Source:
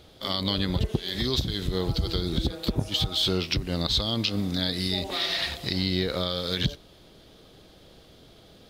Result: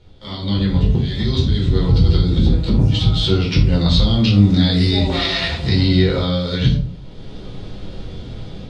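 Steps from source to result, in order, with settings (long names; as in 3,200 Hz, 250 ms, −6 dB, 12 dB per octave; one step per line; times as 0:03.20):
low-pass filter 8,800 Hz 24 dB per octave
bass and treble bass +8 dB, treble −4 dB
automatic gain control gain up to 15 dB
convolution reverb RT60 0.45 s, pre-delay 8 ms, DRR −3.5 dB
level −8 dB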